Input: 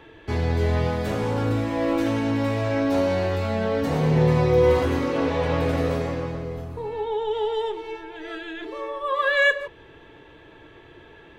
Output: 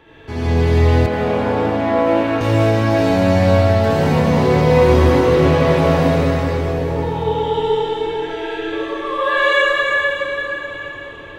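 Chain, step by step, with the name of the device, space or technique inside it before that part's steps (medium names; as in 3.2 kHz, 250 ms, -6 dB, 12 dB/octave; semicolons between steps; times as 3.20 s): cathedral (reverberation RT60 4.3 s, pre-delay 52 ms, DRR -10 dB); 1.06–2.41 s: three-band isolator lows -13 dB, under 210 Hz, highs -13 dB, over 3.4 kHz; trim -1.5 dB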